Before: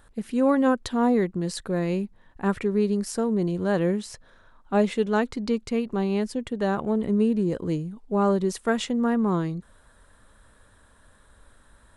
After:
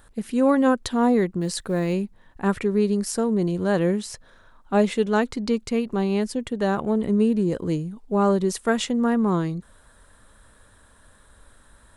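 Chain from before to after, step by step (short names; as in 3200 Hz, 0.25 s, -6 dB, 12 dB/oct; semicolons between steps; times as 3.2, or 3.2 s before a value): high shelf 5500 Hz +4.5 dB; 1.41–1.93 companded quantiser 8-bit; gain +2 dB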